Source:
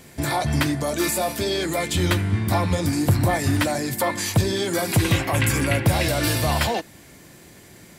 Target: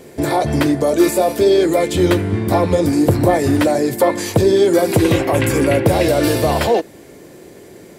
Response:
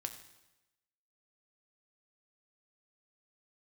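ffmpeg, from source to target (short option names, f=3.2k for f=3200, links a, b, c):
-af "equalizer=f=430:w=1:g=15"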